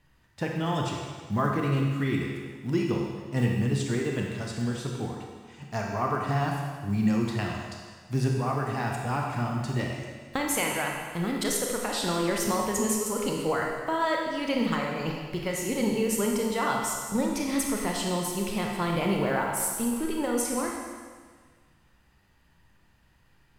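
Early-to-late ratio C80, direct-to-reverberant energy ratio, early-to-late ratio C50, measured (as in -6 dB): 3.0 dB, -0.5 dB, 1.0 dB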